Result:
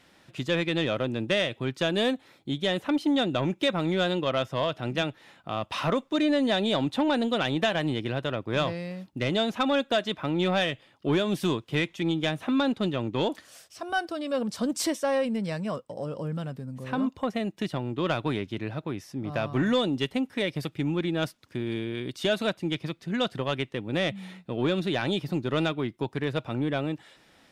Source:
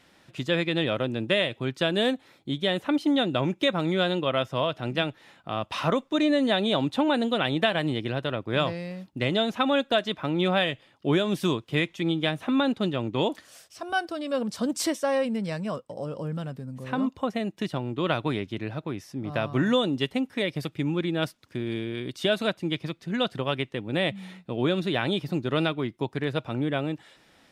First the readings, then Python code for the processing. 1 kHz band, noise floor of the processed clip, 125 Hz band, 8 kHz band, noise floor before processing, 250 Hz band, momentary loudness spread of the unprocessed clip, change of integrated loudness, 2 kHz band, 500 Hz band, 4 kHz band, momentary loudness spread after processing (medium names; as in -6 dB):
-1.5 dB, -60 dBFS, -1.0 dB, +0.5 dB, -60 dBFS, -1.0 dB, 9 LU, -1.0 dB, -1.5 dB, -1.0 dB, -1.5 dB, 9 LU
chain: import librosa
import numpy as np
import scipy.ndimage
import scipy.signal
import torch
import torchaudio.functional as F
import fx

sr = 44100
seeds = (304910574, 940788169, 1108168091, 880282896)

y = 10.0 ** (-15.5 / 20.0) * np.tanh(x / 10.0 ** (-15.5 / 20.0))